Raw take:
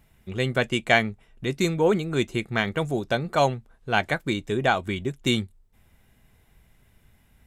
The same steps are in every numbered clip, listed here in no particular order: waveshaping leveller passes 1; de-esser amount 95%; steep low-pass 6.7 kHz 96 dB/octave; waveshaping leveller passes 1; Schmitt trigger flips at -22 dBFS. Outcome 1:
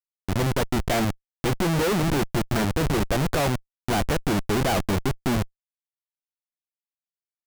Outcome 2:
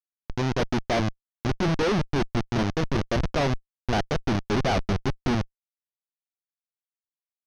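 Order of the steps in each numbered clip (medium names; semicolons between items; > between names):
first waveshaping leveller > steep low-pass > de-esser > second waveshaping leveller > Schmitt trigger; first waveshaping leveller > de-esser > Schmitt trigger > steep low-pass > second waveshaping leveller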